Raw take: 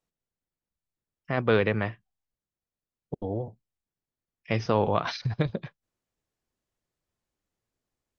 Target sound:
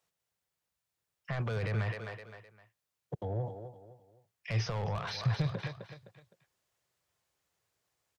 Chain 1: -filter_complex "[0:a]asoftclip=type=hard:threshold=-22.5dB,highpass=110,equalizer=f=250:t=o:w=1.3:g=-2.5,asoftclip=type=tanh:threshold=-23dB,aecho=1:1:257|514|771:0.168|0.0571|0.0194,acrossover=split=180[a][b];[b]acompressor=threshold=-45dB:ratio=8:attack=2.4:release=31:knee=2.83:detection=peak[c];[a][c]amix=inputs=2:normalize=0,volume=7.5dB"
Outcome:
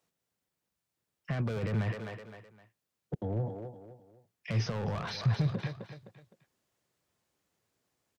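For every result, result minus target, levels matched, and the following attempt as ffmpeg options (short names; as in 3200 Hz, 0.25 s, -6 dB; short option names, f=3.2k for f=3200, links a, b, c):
hard clip: distortion +12 dB; 250 Hz band +3.5 dB
-filter_complex "[0:a]asoftclip=type=hard:threshold=-14dB,highpass=110,equalizer=f=250:t=o:w=1.3:g=-2.5,asoftclip=type=tanh:threshold=-23dB,aecho=1:1:257|514|771:0.168|0.0571|0.0194,acrossover=split=180[a][b];[b]acompressor=threshold=-45dB:ratio=8:attack=2.4:release=31:knee=2.83:detection=peak[c];[a][c]amix=inputs=2:normalize=0,volume=7.5dB"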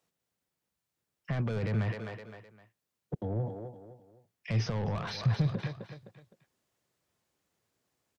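250 Hz band +3.5 dB
-filter_complex "[0:a]asoftclip=type=hard:threshold=-14dB,highpass=110,equalizer=f=250:t=o:w=1.3:g=-14,asoftclip=type=tanh:threshold=-23dB,aecho=1:1:257|514|771:0.168|0.0571|0.0194,acrossover=split=180[a][b];[b]acompressor=threshold=-45dB:ratio=8:attack=2.4:release=31:knee=2.83:detection=peak[c];[a][c]amix=inputs=2:normalize=0,volume=7.5dB"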